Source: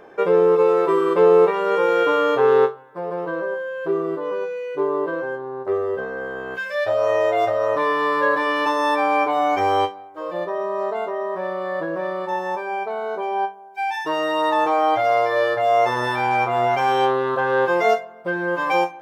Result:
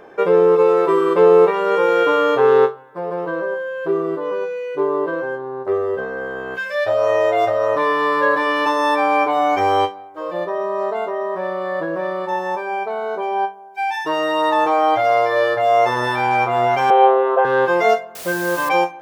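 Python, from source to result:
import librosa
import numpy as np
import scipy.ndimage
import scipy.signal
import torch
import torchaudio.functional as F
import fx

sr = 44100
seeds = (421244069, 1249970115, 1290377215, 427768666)

y = fx.cabinet(x, sr, low_hz=390.0, low_slope=24, high_hz=2800.0, hz=(460.0, 700.0, 1700.0), db=(10, 10, -6), at=(16.9, 17.45))
y = fx.quant_dither(y, sr, seeds[0], bits=6, dither='triangular', at=(18.15, 18.69))
y = y * librosa.db_to_amplitude(2.5)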